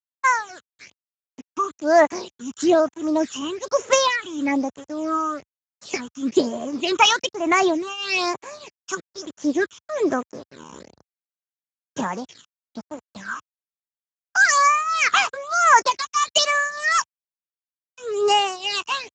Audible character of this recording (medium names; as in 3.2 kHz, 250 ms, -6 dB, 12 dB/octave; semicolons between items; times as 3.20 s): tremolo triangle 1.6 Hz, depth 90%; a quantiser's noise floor 8-bit, dither none; phasing stages 8, 1.1 Hz, lowest notch 570–4800 Hz; Speex